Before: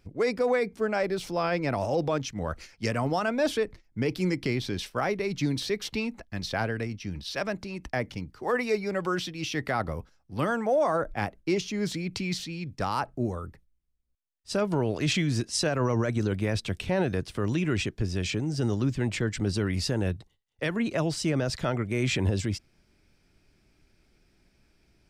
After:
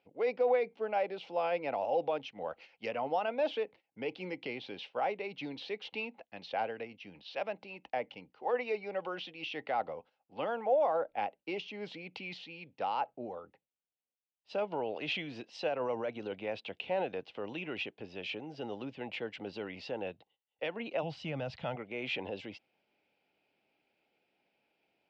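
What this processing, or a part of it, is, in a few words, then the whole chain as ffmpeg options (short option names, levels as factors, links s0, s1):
phone earpiece: -filter_complex "[0:a]asplit=3[s0][s1][s2];[s0]afade=t=out:st=21.02:d=0.02[s3];[s1]asubboost=boost=11.5:cutoff=110,afade=t=in:st=21.02:d=0.02,afade=t=out:st=21.75:d=0.02[s4];[s2]afade=t=in:st=21.75:d=0.02[s5];[s3][s4][s5]amix=inputs=3:normalize=0,highpass=350,equalizer=f=360:t=q:w=4:g=-4,equalizer=f=510:t=q:w=4:g=6,equalizer=f=800:t=q:w=4:g=9,equalizer=f=1200:t=q:w=4:g=-5,equalizer=f=1700:t=q:w=4:g=-6,equalizer=f=2800:t=q:w=4:g=7,lowpass=f=3600:w=0.5412,lowpass=f=3600:w=1.3066,volume=0.422"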